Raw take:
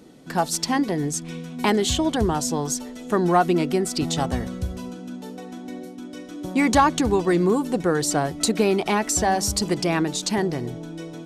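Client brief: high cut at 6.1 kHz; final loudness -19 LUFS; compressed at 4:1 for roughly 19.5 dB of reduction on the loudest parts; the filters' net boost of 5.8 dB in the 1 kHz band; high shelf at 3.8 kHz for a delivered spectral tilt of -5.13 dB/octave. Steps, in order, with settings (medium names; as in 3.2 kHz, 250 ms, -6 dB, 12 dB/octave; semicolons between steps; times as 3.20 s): low-pass 6.1 kHz; peaking EQ 1 kHz +8 dB; treble shelf 3.8 kHz -5.5 dB; compression 4:1, threshold -31 dBFS; trim +14.5 dB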